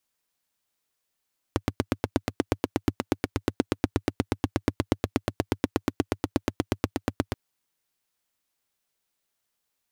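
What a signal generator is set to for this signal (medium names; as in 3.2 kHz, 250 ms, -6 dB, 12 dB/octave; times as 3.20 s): single-cylinder engine model, steady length 5.78 s, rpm 1000, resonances 100/270 Hz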